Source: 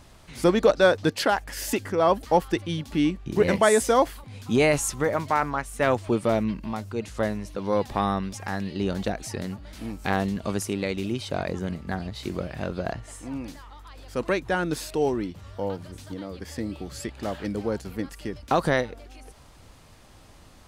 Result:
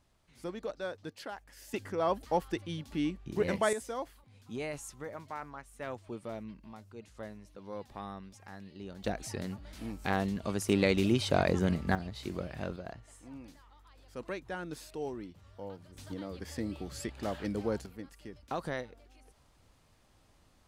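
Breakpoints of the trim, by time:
-20 dB
from 1.74 s -9.5 dB
from 3.73 s -18 dB
from 9.04 s -6 dB
from 10.69 s +1.5 dB
from 11.95 s -7 dB
from 12.76 s -14 dB
from 15.97 s -5 dB
from 17.86 s -14 dB

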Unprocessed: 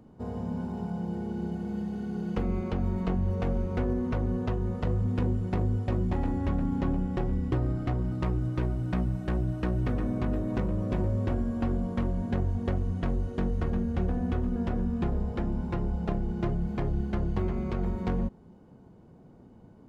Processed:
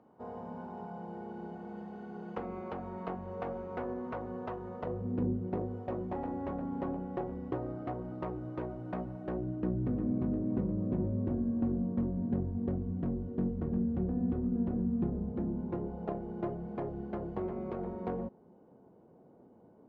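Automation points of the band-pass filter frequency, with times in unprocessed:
band-pass filter, Q 1
4.74 s 870 Hz
5.28 s 250 Hz
5.74 s 620 Hz
9.16 s 620 Hz
9.76 s 240 Hz
15.35 s 240 Hz
16.09 s 550 Hz

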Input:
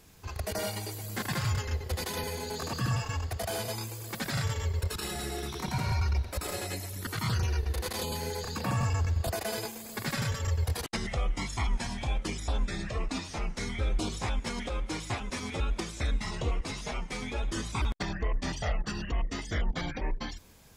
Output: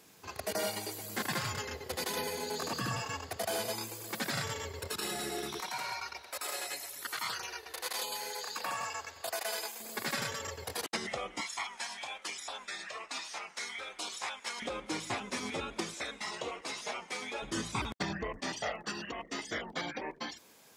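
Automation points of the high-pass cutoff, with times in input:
220 Hz
from 5.60 s 720 Hz
from 9.80 s 300 Hz
from 11.41 s 870 Hz
from 14.62 s 210 Hz
from 15.94 s 440 Hz
from 17.42 s 140 Hz
from 18.39 s 300 Hz

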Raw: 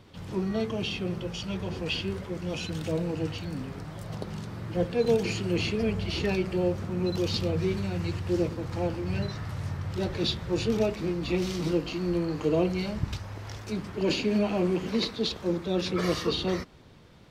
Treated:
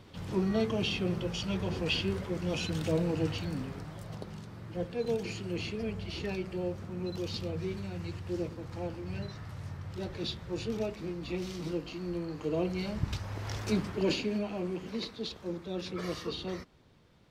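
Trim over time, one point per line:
3.42 s 0 dB
4.45 s -8 dB
12.41 s -8 dB
13.69 s +4 dB
14.46 s -9 dB

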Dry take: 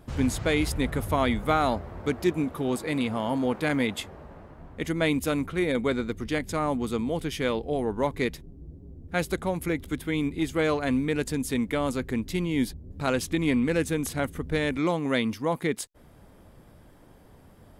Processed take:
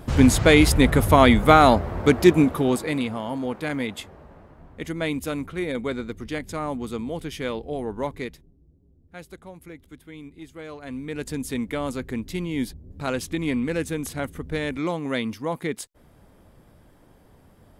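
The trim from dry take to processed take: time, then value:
2.42 s +10 dB
3.24 s -2 dB
8.09 s -2 dB
8.64 s -14 dB
10.68 s -14 dB
11.33 s -1 dB

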